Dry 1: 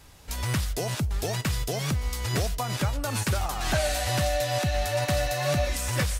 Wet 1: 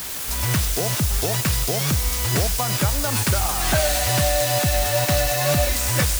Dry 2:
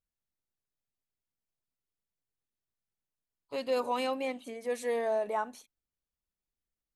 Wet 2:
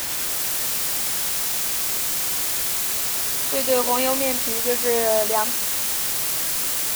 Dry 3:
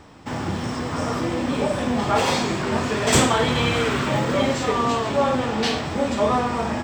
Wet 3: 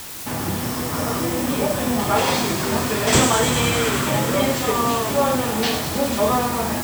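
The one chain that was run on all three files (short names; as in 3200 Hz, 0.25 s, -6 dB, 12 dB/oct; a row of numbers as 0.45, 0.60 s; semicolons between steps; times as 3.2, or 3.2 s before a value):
requantised 6-bit, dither triangular; thin delay 0.1 s, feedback 84%, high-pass 5500 Hz, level -3.5 dB; match loudness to -20 LUFS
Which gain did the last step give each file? +5.0, +9.0, +1.0 dB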